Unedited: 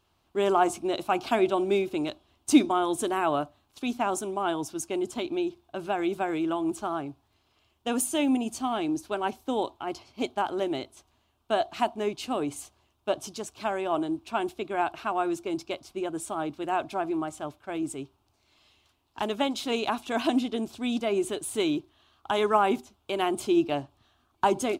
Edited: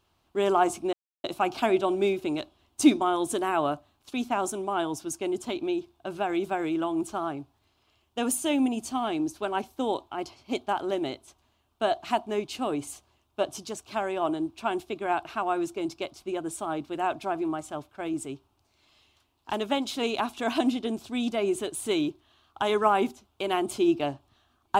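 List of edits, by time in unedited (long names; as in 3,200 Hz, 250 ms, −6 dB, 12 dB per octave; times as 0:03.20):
0:00.93: splice in silence 0.31 s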